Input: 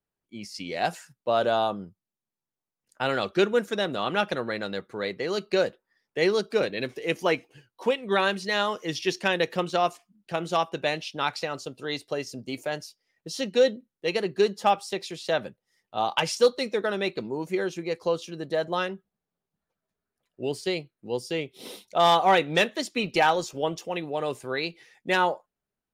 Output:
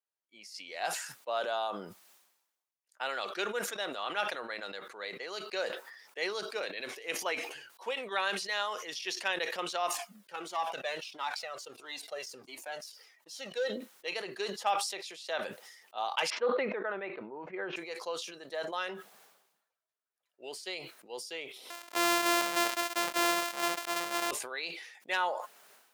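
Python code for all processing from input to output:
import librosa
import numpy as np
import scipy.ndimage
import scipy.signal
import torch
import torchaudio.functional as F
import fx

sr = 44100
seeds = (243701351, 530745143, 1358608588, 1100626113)

y = fx.chain(x, sr, fx.peak_eq(hz=3900.0, db=-3.0, octaves=2.5),
    fx.leveller(passes=1),
    fx.comb_cascade(direction='falling', hz=1.5), at=(9.87, 13.7))
y = fx.chain(y, sr, fx.lowpass(hz=2100.0, slope=24),
    fx.low_shelf(hz=200.0, db=10.5),
    fx.sustainer(db_per_s=25.0), at=(16.3, 17.76))
y = fx.chain(y, sr, fx.sample_sort(block=128),
    fx.leveller(passes=2), at=(21.7, 24.31))
y = scipy.signal.sosfilt(scipy.signal.butter(2, 700.0, 'highpass', fs=sr, output='sos'), y)
y = fx.sustainer(y, sr, db_per_s=60.0)
y = y * librosa.db_to_amplitude(-6.5)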